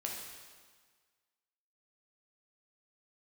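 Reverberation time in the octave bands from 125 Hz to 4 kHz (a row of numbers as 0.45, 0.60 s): 1.5, 1.6, 1.5, 1.6, 1.5, 1.5 s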